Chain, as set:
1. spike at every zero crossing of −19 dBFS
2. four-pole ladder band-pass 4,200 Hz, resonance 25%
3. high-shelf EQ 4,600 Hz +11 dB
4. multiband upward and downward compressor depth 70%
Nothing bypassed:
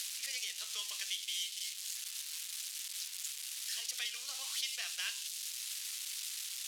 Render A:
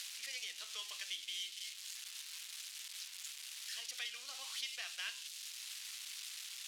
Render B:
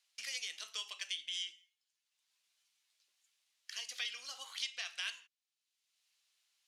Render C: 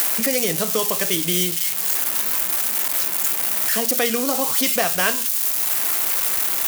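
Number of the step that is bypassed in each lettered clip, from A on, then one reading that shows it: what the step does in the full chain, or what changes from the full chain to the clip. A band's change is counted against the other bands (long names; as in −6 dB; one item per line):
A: 3, 8 kHz band −6.0 dB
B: 1, distortion level −4 dB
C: 2, change in crest factor −2.5 dB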